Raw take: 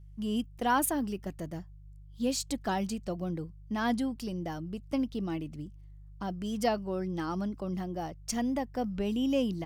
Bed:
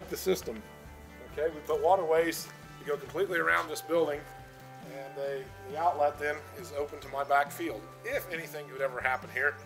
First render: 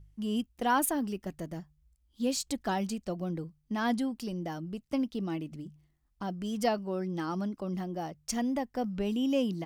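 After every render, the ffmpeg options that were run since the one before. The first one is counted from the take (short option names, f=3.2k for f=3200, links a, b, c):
-af "bandreject=f=50:t=h:w=4,bandreject=f=100:t=h:w=4,bandreject=f=150:t=h:w=4"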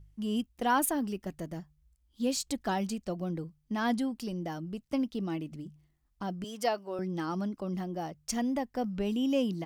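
-filter_complex "[0:a]asettb=1/sr,asplit=3[a][b][c];[a]atrim=end=6.444[d];[b]atrim=start=6.44:end=6.99,asetpts=PTS-STARTPTS,afade=t=in:d=0.004:c=qsin,afade=t=out:st=0.546:d=0.004:c=qsin,highpass=390[e];[c]atrim=start=6.986[f];[d][e]acrossfade=d=0.004:c1=hsin:c2=qsin[g];[g][f]acrossfade=d=0.004:c1=qsin:c2=hsin"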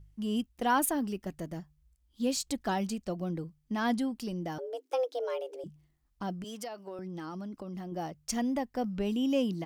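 -filter_complex "[0:a]asettb=1/sr,asplit=3[a][b][c];[a]atrim=end=4.584[d];[b]atrim=start=4.58:end=5.64,asetpts=PTS-STARTPTS,afade=t=in:d=0.004:c=qsin,afade=t=out:st=1.056:d=0.004:c=qsin,afreqshift=250[e];[c]atrim=start=5.636[f];[d][e]acrossfade=d=0.004:c1=hsin:c2=qsin[g];[g][f]acrossfade=d=0.004:c1=qsin:c2=hsin,asettb=1/sr,asplit=3[h][i][j];[h]atrim=end=6.414[k];[i]atrim=start=6.41:end=7.92,asetpts=PTS-STARTPTS,afade=t=in:d=0.004:c=qsin,afade=t=out:st=1.506:d=0.004:c=qsin,acompressor=threshold=-36dB:ratio=8:attack=3.2:release=140:knee=1:detection=peak[l];[j]atrim=start=7.916[m];[k][l]acrossfade=d=0.004:c1=hsin:c2=qsin[n];[n][m]acrossfade=d=0.004:c1=qsin:c2=hsin"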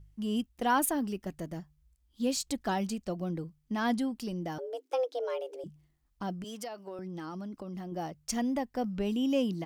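-filter_complex "[0:a]asettb=1/sr,asplit=3[a][b][c];[a]atrim=end=4.884[d];[b]atrim=start=4.88:end=5.42,asetpts=PTS-STARTPTS,afade=t=in:d=0.004:c=qsin,afade=t=out:st=0.536:d=0.004:c=qsin,highshelf=f=10k:g=-5.5[e];[c]atrim=start=5.416[f];[d][e]acrossfade=d=0.004:c1=hsin:c2=qsin[g];[g][f]acrossfade=d=0.004:c1=qsin:c2=hsin"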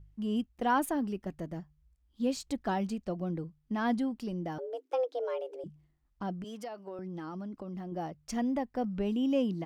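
-af "highshelf=f=3.7k:g=-11.5"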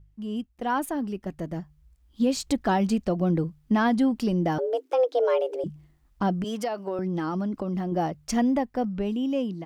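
-af "dynaudnorm=f=300:g=11:m=12dB,alimiter=limit=-14.5dB:level=0:latency=1:release=189"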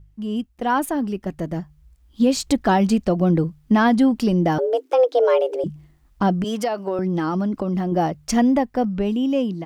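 -af "volume=6dB"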